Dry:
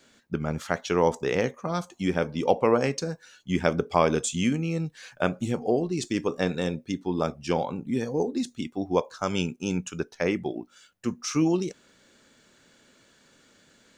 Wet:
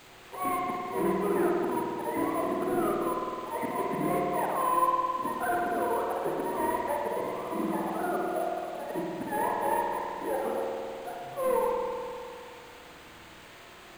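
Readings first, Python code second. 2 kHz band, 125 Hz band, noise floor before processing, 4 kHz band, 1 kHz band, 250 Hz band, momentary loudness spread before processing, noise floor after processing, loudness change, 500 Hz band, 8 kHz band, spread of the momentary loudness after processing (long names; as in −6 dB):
−3.5 dB, −12.5 dB, −61 dBFS, −10.0 dB, +4.0 dB, −5.5 dB, 9 LU, −50 dBFS, −2.5 dB, −3.0 dB, −9.0 dB, 17 LU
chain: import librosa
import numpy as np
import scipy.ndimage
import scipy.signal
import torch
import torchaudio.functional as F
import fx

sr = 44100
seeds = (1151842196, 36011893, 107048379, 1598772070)

p1 = fx.octave_mirror(x, sr, pivot_hz=410.0)
p2 = scipy.signal.sosfilt(scipy.signal.butter(4, 240.0, 'highpass', fs=sr, output='sos'), p1)
p3 = fx.dynamic_eq(p2, sr, hz=410.0, q=0.72, threshold_db=-37.0, ratio=4.0, max_db=-6)
p4 = fx.auto_swell(p3, sr, attack_ms=159.0)
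p5 = fx.over_compress(p4, sr, threshold_db=-34.0, ratio=-1.0)
p6 = p4 + (p5 * 10.0 ** (-2.0 / 20.0))
p7 = fx.dmg_noise_colour(p6, sr, seeds[0], colour='white', level_db=-45.0)
p8 = np.clip(10.0 ** (25.0 / 20.0) * p7, -1.0, 1.0) / 10.0 ** (25.0 / 20.0)
p9 = fx.air_absorb(p8, sr, metres=160.0)
p10 = np.repeat(scipy.signal.resample_poly(p9, 1, 4), 4)[:len(p9)]
y = fx.rev_spring(p10, sr, rt60_s=2.5, pass_ms=(52,), chirp_ms=60, drr_db=-2.0)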